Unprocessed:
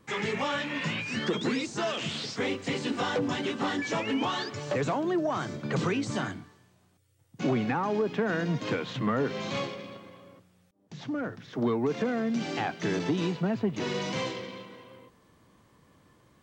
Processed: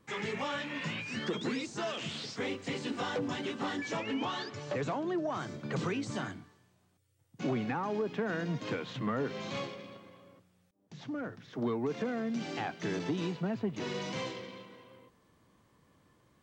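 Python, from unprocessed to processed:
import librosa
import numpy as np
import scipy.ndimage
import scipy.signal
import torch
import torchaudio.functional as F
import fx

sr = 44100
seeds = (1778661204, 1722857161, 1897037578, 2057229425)

y = fx.lowpass(x, sr, hz=7300.0, slope=12, at=(3.97, 5.34))
y = y * librosa.db_to_amplitude(-5.5)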